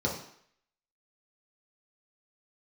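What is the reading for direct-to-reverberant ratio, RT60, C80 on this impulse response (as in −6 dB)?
−3.5 dB, 0.65 s, 9.5 dB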